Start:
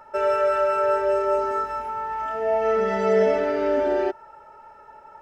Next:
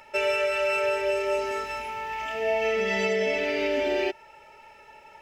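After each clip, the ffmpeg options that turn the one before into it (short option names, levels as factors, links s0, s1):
-af "highshelf=f=1800:t=q:w=3:g=10,alimiter=limit=0.188:level=0:latency=1:release=395,volume=0.841"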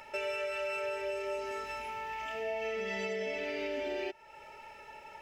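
-af "acompressor=threshold=0.00794:ratio=2"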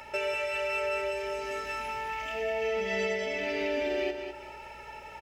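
-af "aeval=exprs='val(0)+0.000562*(sin(2*PI*60*n/s)+sin(2*PI*2*60*n/s)/2+sin(2*PI*3*60*n/s)/3+sin(2*PI*4*60*n/s)/4+sin(2*PI*5*60*n/s)/5)':c=same,aecho=1:1:202|404|606|808:0.422|0.122|0.0355|0.0103,volume=1.68"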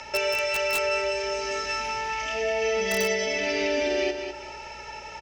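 -filter_complex "[0:a]lowpass=f=5800:t=q:w=4.2,acrossover=split=150|1200[s0][s1][s2];[s2]aeval=exprs='(mod(15.8*val(0)+1,2)-1)/15.8':c=same[s3];[s0][s1][s3]amix=inputs=3:normalize=0,volume=1.68"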